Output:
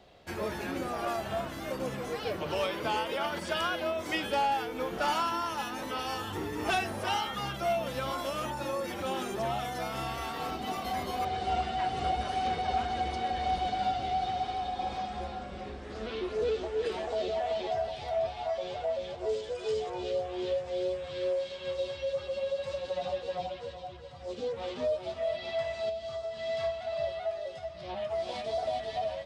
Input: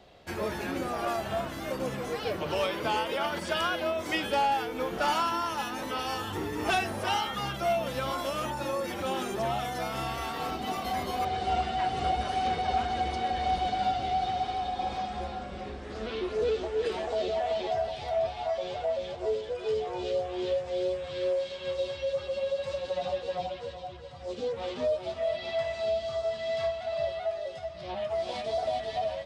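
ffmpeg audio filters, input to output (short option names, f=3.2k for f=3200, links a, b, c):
-filter_complex "[0:a]asettb=1/sr,asplit=3[a][b][c];[a]atrim=end=19.294[d];[b]atrim=start=19.29:end=19.9,asetpts=PTS-STARTPTS,afade=t=in:d=0.004:c=qsin,afade=t=out:st=0.606:d=0.004:c=qsin,equalizer=f=7.5k:t=o:w=1.5:g=8.5[e];[c]atrim=start=19.896[f];[d][e]acrossfade=d=0.004:c1=hsin:c2=qsin[g];[g][f]acrossfade=d=0.004:c1=qsin:c2=hsin,asettb=1/sr,asplit=3[h][i][j];[h]atrim=end=25.894[k];[i]atrim=start=25.89:end=26.37,asetpts=PTS-STARTPTS,afade=t=in:d=0.004:c=qsin,afade=t=out:st=0.476:d=0.004:c=qsin,acompressor=threshold=-33dB:ratio=3[l];[j]atrim=start=26.366[m];[k][l]acrossfade=d=0.004:c1=hsin:c2=qsin[n];[n][m]acrossfade=d=0.004:c1=qsin:c2=hsin,volume=-2dB"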